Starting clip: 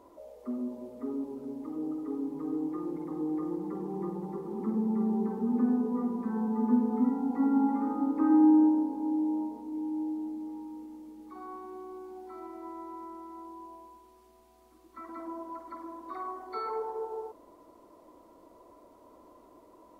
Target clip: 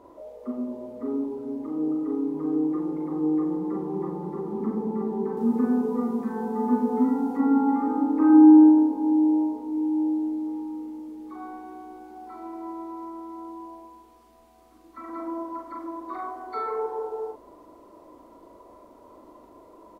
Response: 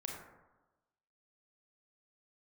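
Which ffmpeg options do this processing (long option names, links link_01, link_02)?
-filter_complex "[0:a]asetnsamples=nb_out_samples=441:pad=0,asendcmd='5.37 highshelf g 3;7.37 highshelf g -4.5',highshelf=frequency=3800:gain=-8.5,asplit=2[link_01][link_02];[link_02]adelay=39,volume=-3dB[link_03];[link_01][link_03]amix=inputs=2:normalize=0,volume=4.5dB"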